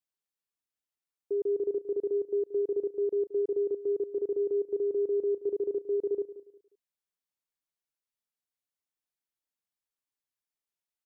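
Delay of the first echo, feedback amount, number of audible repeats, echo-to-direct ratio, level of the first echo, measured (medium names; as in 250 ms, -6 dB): 178 ms, 28%, 2, -14.5 dB, -15.0 dB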